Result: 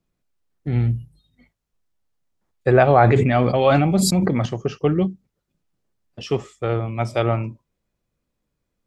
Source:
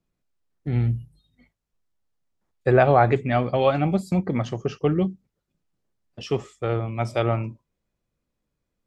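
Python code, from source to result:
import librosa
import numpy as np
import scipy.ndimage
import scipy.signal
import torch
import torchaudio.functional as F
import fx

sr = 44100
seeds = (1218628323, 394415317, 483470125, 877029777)

y = fx.sustainer(x, sr, db_per_s=27.0, at=(2.88, 4.46))
y = y * 10.0 ** (2.5 / 20.0)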